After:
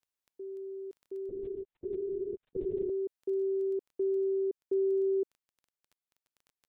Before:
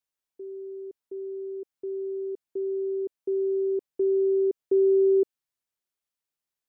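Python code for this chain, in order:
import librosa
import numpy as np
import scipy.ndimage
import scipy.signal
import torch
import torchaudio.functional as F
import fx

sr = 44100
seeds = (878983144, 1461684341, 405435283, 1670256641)

y = fx.rider(x, sr, range_db=3, speed_s=2.0)
y = fx.dmg_crackle(y, sr, seeds[0], per_s=11.0, level_db=-42.0)
y = fx.lpc_vocoder(y, sr, seeds[1], excitation='whisper', order=10, at=(1.29, 2.9))
y = F.gain(torch.from_numpy(y), -6.0).numpy()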